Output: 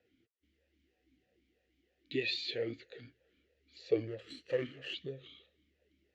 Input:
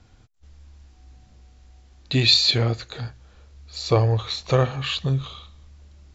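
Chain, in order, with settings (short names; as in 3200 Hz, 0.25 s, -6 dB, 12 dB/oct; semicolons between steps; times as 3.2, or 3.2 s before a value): 4.07–4.94 minimum comb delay 0.67 ms; vowel sweep e-i 3.1 Hz; gain -2 dB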